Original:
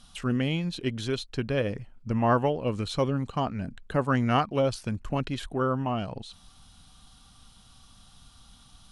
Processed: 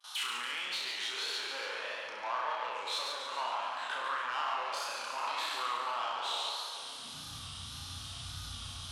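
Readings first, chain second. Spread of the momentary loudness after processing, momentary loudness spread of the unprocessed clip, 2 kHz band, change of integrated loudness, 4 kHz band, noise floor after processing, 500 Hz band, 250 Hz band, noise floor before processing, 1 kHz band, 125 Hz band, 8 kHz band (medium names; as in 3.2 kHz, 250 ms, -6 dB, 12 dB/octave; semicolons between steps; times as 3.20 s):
8 LU, 9 LU, 0.0 dB, -7.5 dB, +4.5 dB, -45 dBFS, -15.5 dB, -29.0 dB, -56 dBFS, -3.0 dB, under -20 dB, +4.0 dB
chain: spectral sustain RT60 1.05 s; compression, threshold -34 dBFS, peak gain reduction 16 dB; peak limiter -30.5 dBFS, peak gain reduction 7 dB; peaking EQ 190 Hz -14 dB 0.35 oct; gate with hold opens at -44 dBFS; saturation -39 dBFS, distortion -12 dB; peaking EQ 3.3 kHz +6.5 dB 2.5 oct; vibrato 1.7 Hz 97 cents; high-pass sweep 910 Hz -> 83 Hz, 6.62–7.36 s; band-stop 750 Hz, Q 12; flutter echo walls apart 5.7 m, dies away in 0.54 s; modulated delay 142 ms, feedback 60%, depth 104 cents, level -5.5 dB; trim +2 dB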